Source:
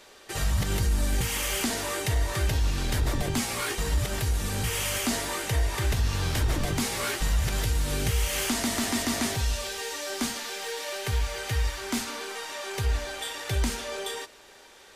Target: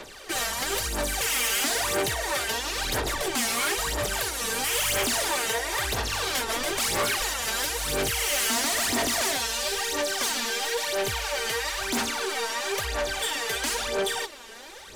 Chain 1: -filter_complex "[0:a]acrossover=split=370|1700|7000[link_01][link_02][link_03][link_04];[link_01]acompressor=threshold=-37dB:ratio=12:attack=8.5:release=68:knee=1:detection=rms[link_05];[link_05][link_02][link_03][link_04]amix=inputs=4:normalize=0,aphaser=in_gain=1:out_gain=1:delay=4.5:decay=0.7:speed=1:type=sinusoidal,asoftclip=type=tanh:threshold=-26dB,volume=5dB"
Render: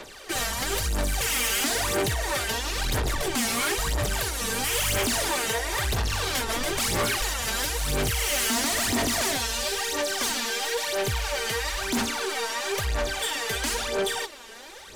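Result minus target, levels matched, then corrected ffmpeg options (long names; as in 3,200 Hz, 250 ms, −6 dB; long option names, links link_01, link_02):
downward compressor: peak gain reduction −8.5 dB
-filter_complex "[0:a]acrossover=split=370|1700|7000[link_01][link_02][link_03][link_04];[link_01]acompressor=threshold=-46.5dB:ratio=12:attack=8.5:release=68:knee=1:detection=rms[link_05];[link_05][link_02][link_03][link_04]amix=inputs=4:normalize=0,aphaser=in_gain=1:out_gain=1:delay=4.5:decay=0.7:speed=1:type=sinusoidal,asoftclip=type=tanh:threshold=-26dB,volume=5dB"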